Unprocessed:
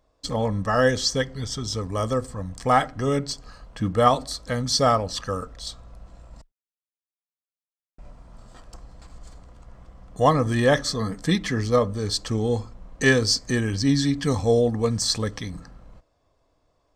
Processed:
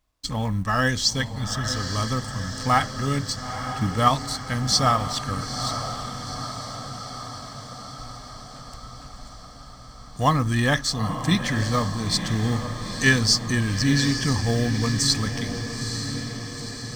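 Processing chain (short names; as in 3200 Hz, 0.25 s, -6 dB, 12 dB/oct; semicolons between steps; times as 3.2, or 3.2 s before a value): G.711 law mismatch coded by A; bell 490 Hz -13 dB 1.1 oct; diffused feedback echo 0.907 s, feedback 65%, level -8.5 dB; gain +3 dB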